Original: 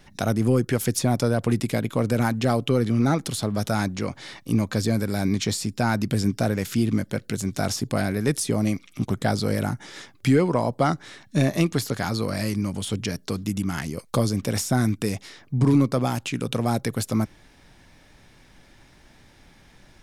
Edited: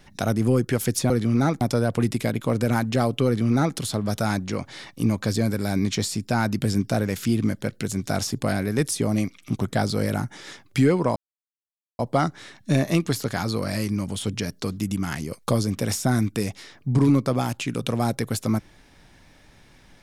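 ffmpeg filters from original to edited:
-filter_complex "[0:a]asplit=4[s0][s1][s2][s3];[s0]atrim=end=1.102[s4];[s1]atrim=start=2.748:end=3.262[s5];[s2]atrim=start=1.098:end=10.65,asetpts=PTS-STARTPTS,afade=t=out:st=9.548:d=0.004:c=hsin,apad=pad_dur=0.83[s6];[s3]atrim=start=10.65,asetpts=PTS-STARTPTS,afade=t=in:d=0.004:c=hsin[s7];[s4][s5]acrossfade=d=0.004:c1=hsin:c2=hsin[s8];[s6][s7]concat=n=2:v=0:a=1[s9];[s8][s9]acrossfade=d=0.004:c1=hsin:c2=hsin"

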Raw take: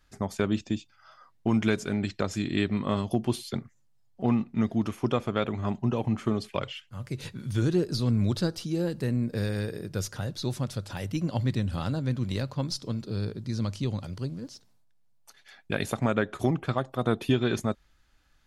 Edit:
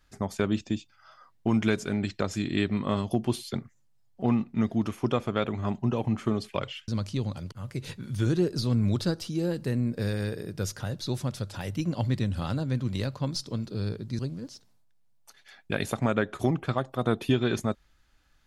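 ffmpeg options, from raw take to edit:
-filter_complex "[0:a]asplit=4[s0][s1][s2][s3];[s0]atrim=end=6.882[s4];[s1]atrim=start=13.548:end=14.192[s5];[s2]atrim=start=6.878:end=13.552[s6];[s3]atrim=start=14.188[s7];[s4][s5]acrossfade=d=0.004:c1=hsin:c2=hsin[s8];[s8][s6]acrossfade=d=0.004:c1=hsin:c2=hsin[s9];[s9][s7]acrossfade=d=0.004:c1=hsin:c2=hsin"

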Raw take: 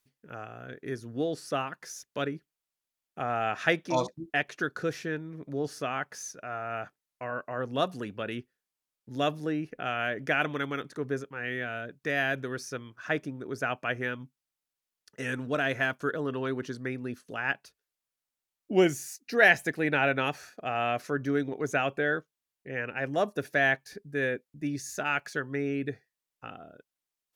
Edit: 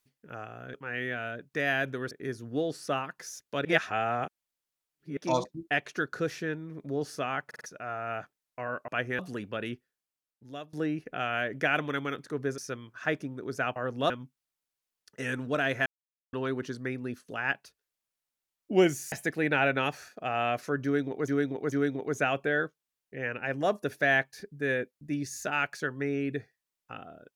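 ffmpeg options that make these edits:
-filter_complex "[0:a]asplit=20[s0][s1][s2][s3][s4][s5][s6][s7][s8][s9][s10][s11][s12][s13][s14][s15][s16][s17][s18][s19];[s0]atrim=end=0.742[s20];[s1]atrim=start=11.238:end=12.612[s21];[s2]atrim=start=0.738:end=2.282[s22];[s3]atrim=start=2.278:end=3.802,asetpts=PTS-STARTPTS,areverse[s23];[s4]atrim=start=3.798:end=6.142[s24];[s5]atrim=start=6.088:end=6.142[s25];[s6]atrim=start=6.088:end=6.142[s26];[s7]atrim=start=6.088:end=6.142[s27];[s8]atrim=start=6.288:end=7.512[s28];[s9]atrim=start=13.788:end=14.102[s29];[s10]atrim=start=7.848:end=9.39,asetpts=PTS-STARTPTS,afade=t=out:st=0.532:d=1.01:silence=0.0794328[s30];[s11]atrim=start=9.39:end=11.242,asetpts=PTS-STARTPTS,afade=t=in:d=0.004:c=hsin:silence=0.0794328[s31];[s12]atrim=start=12.608:end=13.792[s32];[s13]atrim=start=7.508:end=7.852[s33];[s14]atrim=start=14.098:end=15.86,asetpts=PTS-STARTPTS,afade=t=out:st=1.758:d=0.004:c=hsin[s34];[s15]atrim=start=15.86:end=16.33,asetpts=PTS-STARTPTS,volume=0[s35];[s16]atrim=start=16.33:end=19.122,asetpts=PTS-STARTPTS,afade=t=in:d=0.004:c=hsin[s36];[s17]atrim=start=19.528:end=21.692[s37];[s18]atrim=start=21.248:end=21.692[s38];[s19]atrim=start=21.248[s39];[s20][s21]acrossfade=d=0.004:c1=hsin:c2=hsin[s40];[s40][s22]acrossfade=d=0.004:c1=hsin:c2=hsin[s41];[s41][s23]acrossfade=d=0.004:c1=hsin:c2=hsin[s42];[s42][s24]acrossfade=d=0.004:c1=hsin:c2=hsin[s43];[s43][s25]acrossfade=d=0.004:c1=hsin:c2=hsin[s44];[s44][s26]acrossfade=d=0.004:c1=hsin:c2=hsin[s45];[s45][s27]acrossfade=d=0.004:c1=hsin:c2=hsin[s46];[s46][s28]acrossfade=d=0.004:c1=hsin:c2=hsin[s47];[s47][s29]acrossfade=d=0.004:c1=hsin:c2=hsin[s48];[s30][s31]concat=n=2:v=0:a=1[s49];[s48][s49]acrossfade=d=0.004:c1=hsin:c2=hsin[s50];[s50][s32]acrossfade=d=0.004:c1=hsin:c2=hsin[s51];[s51][s33]acrossfade=d=0.004:c1=hsin:c2=hsin[s52];[s34][s35][s36]concat=n=3:v=0:a=1[s53];[s52][s53]acrossfade=d=0.004:c1=hsin:c2=hsin[s54];[s54][s37]acrossfade=d=0.004:c1=hsin:c2=hsin[s55];[s55][s38]acrossfade=d=0.004:c1=hsin:c2=hsin[s56];[s56][s39]acrossfade=d=0.004:c1=hsin:c2=hsin"

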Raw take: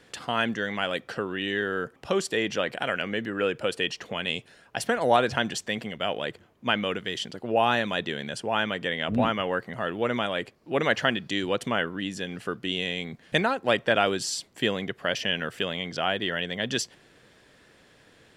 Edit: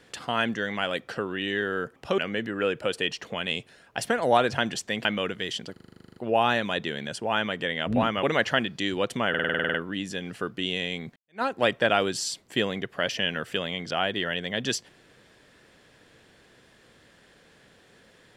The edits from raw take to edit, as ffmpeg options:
-filter_complex "[0:a]asplit=25[s0][s1][s2][s3][s4][s5][s6][s7][s8][s9][s10][s11][s12][s13][s14][s15][s16][s17][s18][s19][s20][s21][s22][s23][s24];[s0]atrim=end=2.182[s25];[s1]atrim=start=2.968:end=5.842[s26];[s2]atrim=start=6.708:end=7.422[s27];[s3]atrim=start=7.378:end=7.422[s28];[s4]atrim=start=7.378:end=7.422[s29];[s5]atrim=start=7.378:end=7.422[s30];[s6]atrim=start=7.378:end=7.422[s31];[s7]atrim=start=7.378:end=7.422[s32];[s8]atrim=start=7.378:end=7.422[s33];[s9]atrim=start=7.378:end=7.422[s34];[s10]atrim=start=7.378:end=7.422[s35];[s11]atrim=start=7.378:end=7.422[s36];[s12]atrim=start=7.378:end=7.422[s37];[s13]atrim=start=7.378:end=9.452[s38];[s14]atrim=start=10.738:end=11.852[s39];[s15]atrim=start=11.798:end=11.852[s40];[s16]atrim=start=11.798:end=11.852[s41];[s17]atrim=start=11.798:end=11.852[s42];[s18]atrim=start=11.798:end=11.852[s43];[s19]atrim=start=11.798:end=11.852[s44];[s20]atrim=start=11.798:end=11.852[s45];[s21]atrim=start=11.798:end=11.852[s46];[s22]atrim=start=11.798:end=11.852[s47];[s23]atrim=start=11.798:end=13.22,asetpts=PTS-STARTPTS,afade=t=out:st=1.418:d=0.004:c=hsin[s48];[s24]atrim=start=13.22,asetpts=PTS-STARTPTS,afade=t=in:d=0.26:c=exp[s49];[s25][s26]acrossfade=d=0.004:c1=hsin:c2=hsin[s50];[s50][s27]acrossfade=d=0.004:c1=hsin:c2=hsin[s51];[s51][s28]acrossfade=d=0.004:c1=hsin:c2=hsin[s52];[s52][s29]acrossfade=d=0.004:c1=hsin:c2=hsin[s53];[s53][s30]acrossfade=d=0.004:c1=hsin:c2=hsin[s54];[s54][s31]acrossfade=d=0.004:c1=hsin:c2=hsin[s55];[s55][s32]acrossfade=d=0.004:c1=hsin:c2=hsin[s56];[s56][s33]acrossfade=d=0.004:c1=hsin:c2=hsin[s57];[s57][s34]acrossfade=d=0.004:c1=hsin:c2=hsin[s58];[s58][s35]acrossfade=d=0.004:c1=hsin:c2=hsin[s59];[s59][s36]acrossfade=d=0.004:c1=hsin:c2=hsin[s60];[s60][s37]acrossfade=d=0.004:c1=hsin:c2=hsin[s61];[s61][s38]acrossfade=d=0.004:c1=hsin:c2=hsin[s62];[s62][s39]acrossfade=d=0.004:c1=hsin:c2=hsin[s63];[s63][s40]acrossfade=d=0.004:c1=hsin:c2=hsin[s64];[s64][s41]acrossfade=d=0.004:c1=hsin:c2=hsin[s65];[s65][s42]acrossfade=d=0.004:c1=hsin:c2=hsin[s66];[s66][s43]acrossfade=d=0.004:c1=hsin:c2=hsin[s67];[s67][s44]acrossfade=d=0.004:c1=hsin:c2=hsin[s68];[s68][s45]acrossfade=d=0.004:c1=hsin:c2=hsin[s69];[s69][s46]acrossfade=d=0.004:c1=hsin:c2=hsin[s70];[s70][s47]acrossfade=d=0.004:c1=hsin:c2=hsin[s71];[s48][s49]concat=n=2:v=0:a=1[s72];[s71][s72]acrossfade=d=0.004:c1=hsin:c2=hsin"

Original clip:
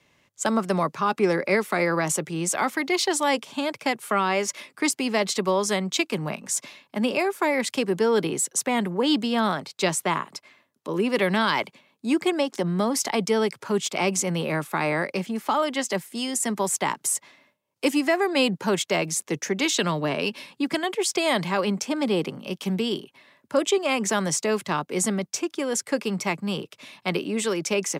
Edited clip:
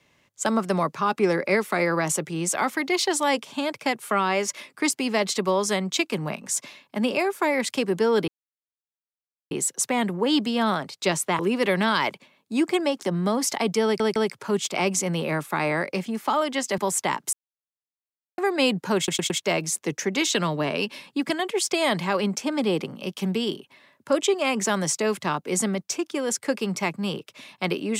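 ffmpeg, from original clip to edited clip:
-filter_complex "[0:a]asplit=11[s0][s1][s2][s3][s4][s5][s6][s7][s8][s9][s10];[s0]atrim=end=8.28,asetpts=PTS-STARTPTS,afade=t=out:st=8.276:d=0.004:c=hsin,apad=pad_dur=1.23[s11];[s1]atrim=start=8.28:end=10.162,asetpts=PTS-STARTPTS,afade=t=in:d=0.004:c=hsin[s12];[s2]atrim=start=10.918:end=13.532[s13];[s3]atrim=start=13.368:end=13.532[s14];[s4]atrim=start=13.368:end=15.992[s15];[s5]atrim=start=16.548:end=17.1,asetpts=PTS-STARTPTS,afade=t=out:st=0.548:d=0.004:c=hsin[s16];[s6]atrim=start=17.1:end=18.15,asetpts=PTS-STARTPTS,volume=0[s17];[s7]atrim=start=18.15:end=18.852,asetpts=PTS-STARTPTS,afade=t=in:d=0.004:c=hsin[s18];[s8]atrim=start=18.738:end=18.852[s19];[s9]atrim=start=18.738:end=18.852[s20];[s10]atrim=start=18.738[s21];[s11][s12]concat=n=2:v=0:a=1[s22];[s22][s13]acrossfade=d=0.004:c1=hsin:c2=hsin[s23];[s23][s14]acrossfade=d=0.004:c1=hsin:c2=hsin[s24];[s24][s15]acrossfade=d=0.004:c1=hsin:c2=hsin[s25];[s16][s17][s18]concat=n=3:v=0:a=1[s26];[s25][s26]acrossfade=d=0.004:c1=hsin:c2=hsin[s27];[s27][s19]acrossfade=d=0.004:c1=hsin:c2=hsin[s28];[s28][s20]acrossfade=d=0.004:c1=hsin:c2=hsin[s29];[s29][s21]acrossfade=d=0.004:c1=hsin:c2=hsin"

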